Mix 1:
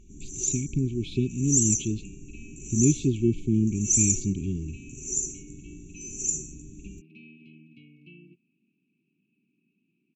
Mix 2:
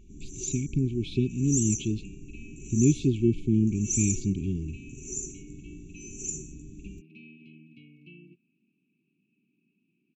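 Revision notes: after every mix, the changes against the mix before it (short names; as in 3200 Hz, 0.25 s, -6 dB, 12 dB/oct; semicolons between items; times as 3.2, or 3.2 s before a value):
first sound: add high shelf 3900 Hz -9 dB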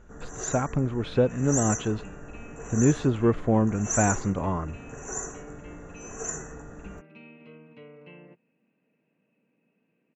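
master: remove brick-wall FIR band-stop 410–2200 Hz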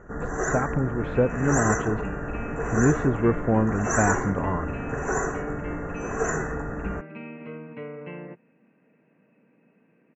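first sound +11.5 dB; second sound +10.5 dB; master: add resonant high shelf 2700 Hz -13 dB, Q 1.5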